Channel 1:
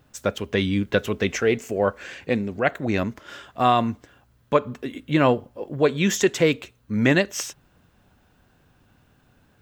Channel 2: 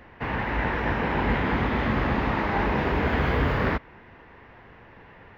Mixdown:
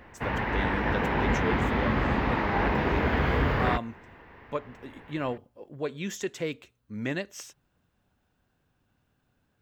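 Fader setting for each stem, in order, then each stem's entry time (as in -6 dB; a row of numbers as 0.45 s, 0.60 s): -13.0 dB, -1.5 dB; 0.00 s, 0.00 s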